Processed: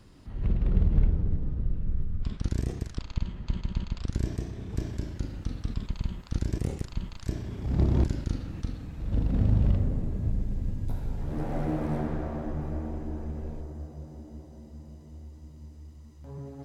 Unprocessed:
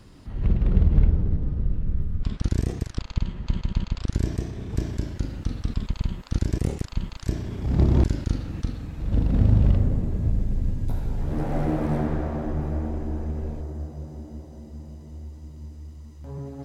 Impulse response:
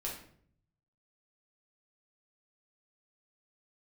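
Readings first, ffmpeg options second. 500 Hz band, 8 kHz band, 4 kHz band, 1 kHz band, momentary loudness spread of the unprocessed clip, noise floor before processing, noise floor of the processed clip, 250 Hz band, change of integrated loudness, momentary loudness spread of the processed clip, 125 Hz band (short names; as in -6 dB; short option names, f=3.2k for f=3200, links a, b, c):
-5.0 dB, n/a, -5.0 dB, -5.0 dB, 19 LU, -45 dBFS, -48 dBFS, -5.0 dB, -5.0 dB, 21 LU, -5.0 dB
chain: -filter_complex "[0:a]asplit=2[a][b];[1:a]atrim=start_sample=2205,adelay=32[c];[b][c]afir=irnorm=-1:irlink=0,volume=-17dB[d];[a][d]amix=inputs=2:normalize=0,volume=-5dB"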